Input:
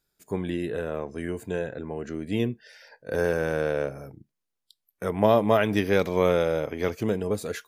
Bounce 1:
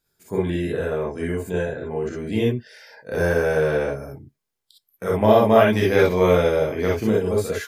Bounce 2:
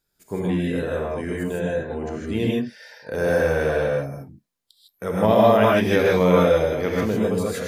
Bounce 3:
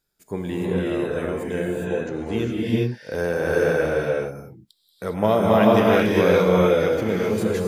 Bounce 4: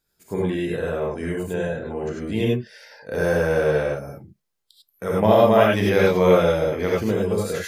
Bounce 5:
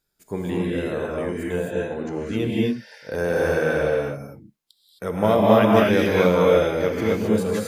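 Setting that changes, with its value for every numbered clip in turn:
gated-style reverb, gate: 80 ms, 180 ms, 440 ms, 120 ms, 290 ms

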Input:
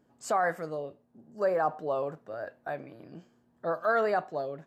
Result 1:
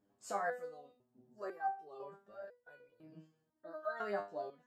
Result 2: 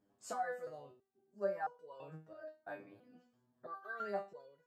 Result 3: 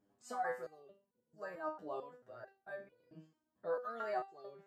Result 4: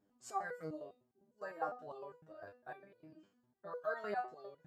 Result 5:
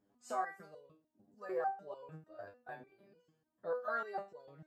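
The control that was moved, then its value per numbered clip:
resonator arpeggio, rate: 2 Hz, 3 Hz, 4.5 Hz, 9.9 Hz, 6.7 Hz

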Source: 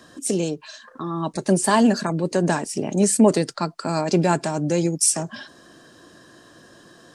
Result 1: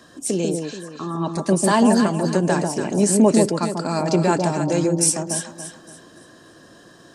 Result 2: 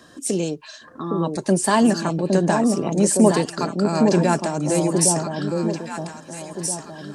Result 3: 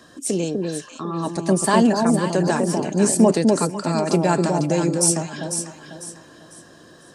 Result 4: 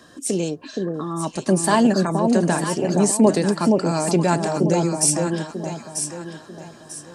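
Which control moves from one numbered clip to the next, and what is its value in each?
echo whose repeats swap between lows and highs, time: 143 ms, 812 ms, 249 ms, 471 ms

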